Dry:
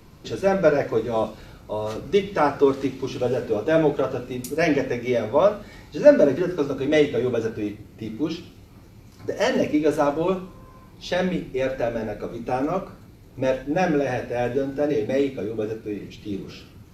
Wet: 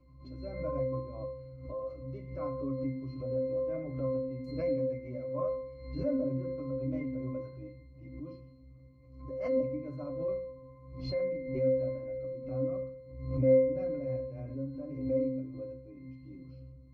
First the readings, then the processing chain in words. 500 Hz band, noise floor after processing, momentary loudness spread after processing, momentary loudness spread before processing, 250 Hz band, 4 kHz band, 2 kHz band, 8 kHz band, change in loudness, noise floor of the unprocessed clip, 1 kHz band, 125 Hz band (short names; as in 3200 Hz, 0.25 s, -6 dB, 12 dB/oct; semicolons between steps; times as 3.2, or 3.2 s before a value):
-11.0 dB, -54 dBFS, 17 LU, 14 LU, -11.5 dB, -20.5 dB, -24.0 dB, under -35 dB, -11.0 dB, -48 dBFS, -21.0 dB, -6.0 dB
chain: dynamic EQ 3000 Hz, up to -6 dB, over -47 dBFS, Q 2.7; octave resonator C, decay 0.75 s; backwards sustainer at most 68 dB/s; gain +6 dB